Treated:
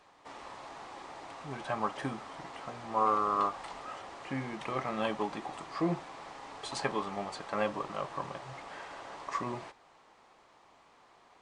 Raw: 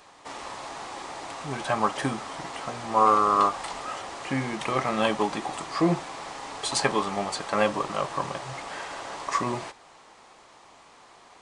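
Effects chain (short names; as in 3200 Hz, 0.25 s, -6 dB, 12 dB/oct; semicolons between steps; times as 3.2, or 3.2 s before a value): high shelf 5600 Hz -11 dB; gain -8 dB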